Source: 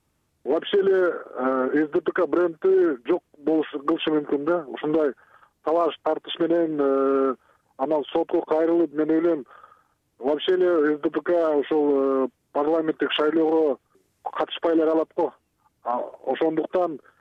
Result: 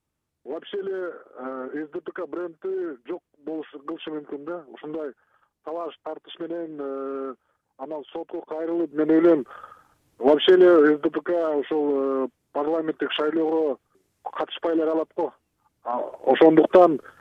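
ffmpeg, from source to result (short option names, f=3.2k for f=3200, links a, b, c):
-af "volume=17.5dB,afade=t=in:st=8.55:d=0.33:silence=0.446684,afade=t=in:st=8.88:d=0.5:silence=0.354813,afade=t=out:st=10.69:d=0.52:silence=0.375837,afade=t=in:st=15.91:d=0.61:silence=0.266073"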